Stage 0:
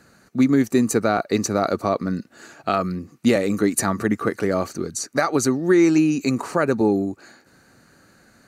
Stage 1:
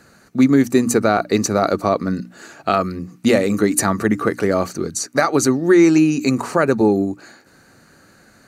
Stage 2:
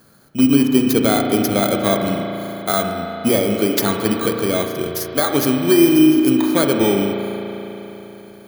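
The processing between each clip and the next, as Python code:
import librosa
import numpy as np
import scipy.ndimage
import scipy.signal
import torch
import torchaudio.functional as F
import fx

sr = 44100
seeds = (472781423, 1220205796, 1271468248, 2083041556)

y1 = fx.hum_notches(x, sr, base_hz=60, count=5)
y1 = y1 * 10.0 ** (4.0 / 20.0)
y2 = fx.bit_reversed(y1, sr, seeds[0], block=16)
y2 = fx.rev_spring(y2, sr, rt60_s=3.8, pass_ms=(35,), chirp_ms=40, drr_db=2.5)
y2 = y2 * 10.0 ** (-2.0 / 20.0)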